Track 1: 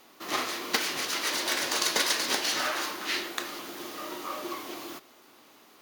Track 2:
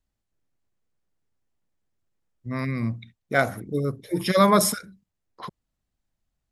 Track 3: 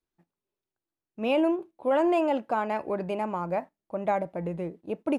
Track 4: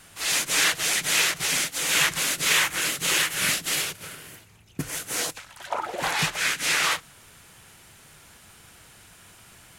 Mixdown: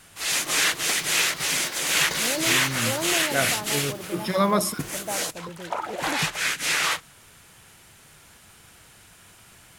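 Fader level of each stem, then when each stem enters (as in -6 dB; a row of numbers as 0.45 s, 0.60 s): -5.0 dB, -4.0 dB, -7.0 dB, -0.5 dB; 0.15 s, 0.00 s, 1.00 s, 0.00 s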